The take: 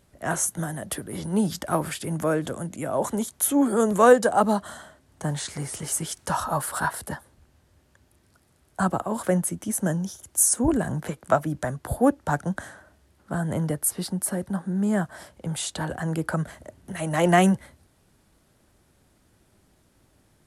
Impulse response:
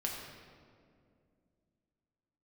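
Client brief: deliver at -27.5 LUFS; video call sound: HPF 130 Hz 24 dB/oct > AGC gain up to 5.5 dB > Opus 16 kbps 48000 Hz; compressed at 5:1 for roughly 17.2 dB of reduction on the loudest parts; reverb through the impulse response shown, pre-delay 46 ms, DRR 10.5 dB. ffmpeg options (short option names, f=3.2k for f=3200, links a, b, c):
-filter_complex "[0:a]acompressor=threshold=-30dB:ratio=5,asplit=2[a][b];[1:a]atrim=start_sample=2205,adelay=46[c];[b][c]afir=irnorm=-1:irlink=0,volume=-13dB[d];[a][d]amix=inputs=2:normalize=0,highpass=f=130:w=0.5412,highpass=f=130:w=1.3066,dynaudnorm=m=5.5dB,volume=5dB" -ar 48000 -c:a libopus -b:a 16k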